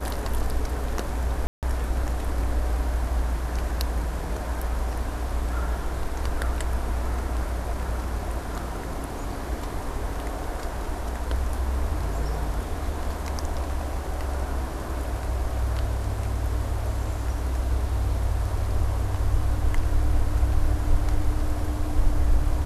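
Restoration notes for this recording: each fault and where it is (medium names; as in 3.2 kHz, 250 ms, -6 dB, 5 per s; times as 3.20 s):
1.47–1.63 s: dropout 158 ms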